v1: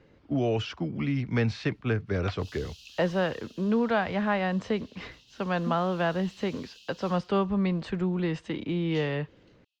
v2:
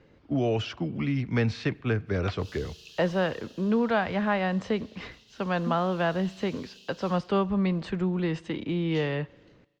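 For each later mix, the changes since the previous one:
speech: send on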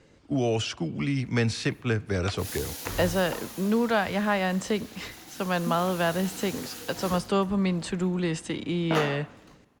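background: remove Chebyshev high-pass filter 2,600 Hz, order 8
master: remove high-frequency loss of the air 200 metres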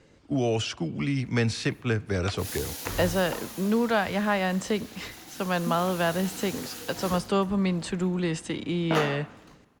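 background: send +9.5 dB

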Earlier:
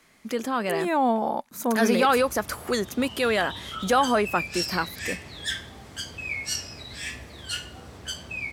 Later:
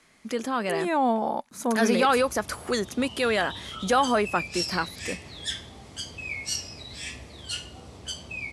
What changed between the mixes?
background: add parametric band 1,600 Hz −9 dB 0.54 octaves
master: add elliptic low-pass filter 11,000 Hz, stop band 70 dB

